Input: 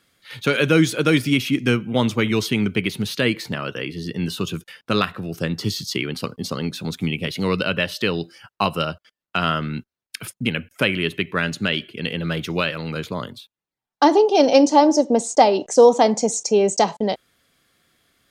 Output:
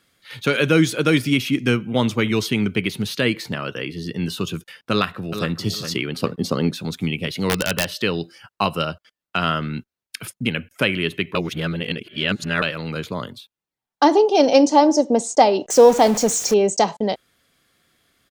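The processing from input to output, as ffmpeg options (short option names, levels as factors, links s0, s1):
-filter_complex "[0:a]asplit=2[s0][s1];[s1]afade=t=in:st=4.91:d=0.01,afade=t=out:st=5.53:d=0.01,aecho=0:1:410|820|1230:0.354813|0.106444|0.0319332[s2];[s0][s2]amix=inputs=2:normalize=0,asettb=1/sr,asplit=3[s3][s4][s5];[s3]atrim=end=6.224[s6];[s4]atrim=start=6.22:end=6.74,asetpts=PTS-STARTPTS,afade=t=in:d=0.004:c=qsin,afade=t=out:st=0.516:d=0.004:c=qsin,equalizer=f=350:w=0.35:g=6.5[s7];[s5]atrim=start=6.736[s8];[s6][s7]acrossfade=d=0.004:c1=hsin:c2=qsin[s9];[s9][s8]acrossfade=d=0.004:c1=qsin:c2=hsin,asettb=1/sr,asplit=3[s10][s11][s12];[s10]atrim=end=7.424[s13];[s11]atrim=start=7.42:end=7.91,asetpts=PTS-STARTPTS,afade=t=in:d=0.004:c=qsin,afade=t=out:st=0.486:d=0.004:c=qsin,aeval=exprs='(mod(3.16*val(0)+1,2)-1)/3.16':c=same[s14];[s12]atrim=start=7.906[s15];[s13][s14]acrossfade=d=0.004:c1=hsin:c2=qsin[s16];[s16][s15]acrossfade=d=0.004:c1=qsin:c2=hsin,asettb=1/sr,asplit=3[s17][s18][s19];[s17]atrim=end=15.704[s20];[s18]atrim=start=15.7:end=16.54,asetpts=PTS-STARTPTS,afade=t=in:d=0.004:c=qsin,afade=t=out:st=0.836:d=0.004:c=qsin,aeval=exprs='val(0)+0.5*0.0631*sgn(val(0))':c=same[s21];[s19]atrim=start=16.536[s22];[s20][s21]acrossfade=d=0.004:c1=hsin:c2=qsin[s23];[s23][s22]acrossfade=d=0.004:c1=qsin:c2=hsin,asplit=3[s24][s25][s26];[s24]atrim=end=11.352[s27];[s25]atrim=start=11.348:end=12.622,asetpts=PTS-STARTPTS,areverse[s28];[s26]atrim=start=12.618[s29];[s27][s28]acrossfade=d=0.004:c1=hsin:c2=hsin[s30];[s30][s29]acrossfade=d=0.004:c1=hsin:c2=hsin"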